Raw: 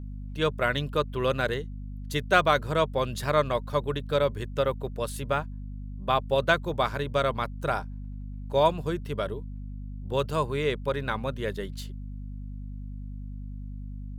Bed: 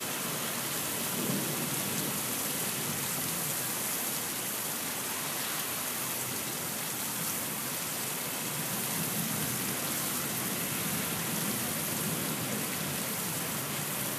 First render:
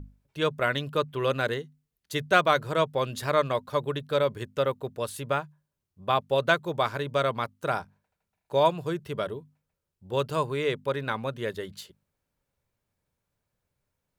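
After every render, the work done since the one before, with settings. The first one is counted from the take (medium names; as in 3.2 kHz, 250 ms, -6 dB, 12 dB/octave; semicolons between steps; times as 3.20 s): hum notches 50/100/150/200/250 Hz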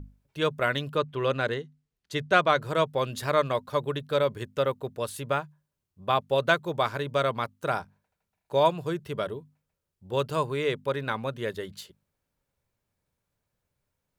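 0.95–2.62 s: distance through air 53 m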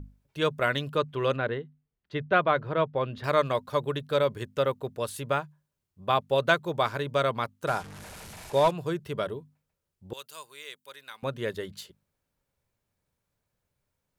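1.36–3.24 s: distance through air 330 m; 7.67–8.71 s: one-bit delta coder 64 kbps, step -38 dBFS; 10.13–11.23 s: differentiator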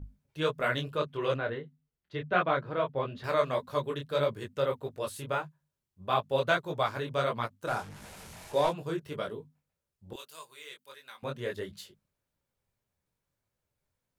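detune thickener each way 56 cents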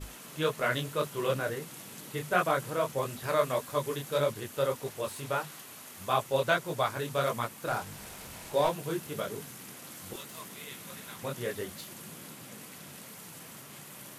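add bed -13.5 dB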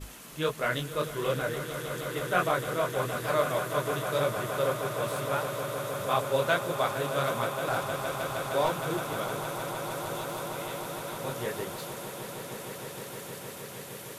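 echo with a slow build-up 155 ms, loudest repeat 8, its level -13 dB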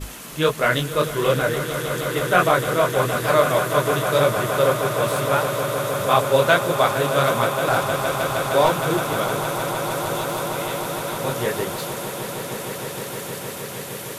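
trim +10 dB; peak limiter -3 dBFS, peak gain reduction 1 dB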